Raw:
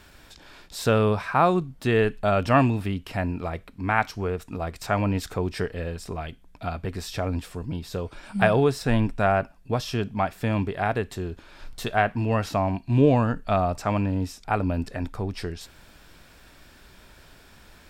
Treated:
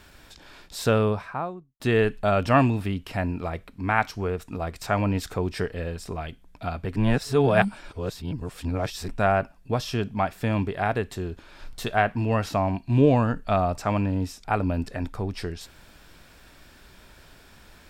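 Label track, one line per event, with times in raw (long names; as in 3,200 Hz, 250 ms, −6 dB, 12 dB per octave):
0.820000	1.800000	fade out and dull
6.960000	9.080000	reverse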